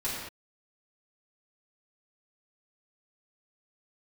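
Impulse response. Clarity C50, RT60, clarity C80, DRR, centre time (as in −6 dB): 0.0 dB, non-exponential decay, 2.0 dB, −9.0 dB, 71 ms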